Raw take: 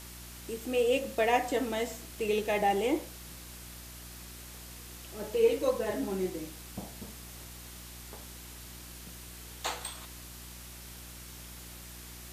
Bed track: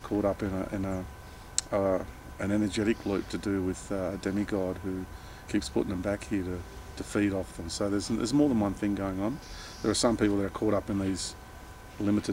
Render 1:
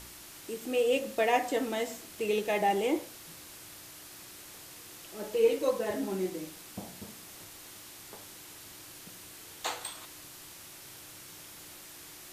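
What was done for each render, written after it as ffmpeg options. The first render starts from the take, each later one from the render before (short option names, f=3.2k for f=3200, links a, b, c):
-af "bandreject=f=60:t=h:w=4,bandreject=f=120:t=h:w=4,bandreject=f=180:t=h:w=4,bandreject=f=240:t=h:w=4"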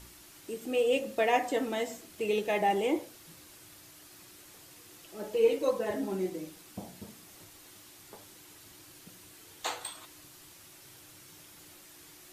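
-af "afftdn=nr=6:nf=-49"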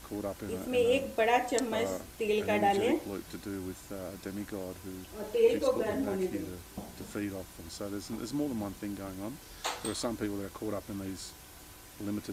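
-filter_complex "[1:a]volume=-9dB[a];[0:a][a]amix=inputs=2:normalize=0"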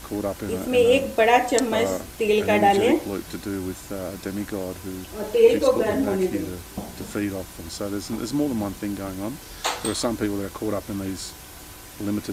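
-af "volume=9.5dB"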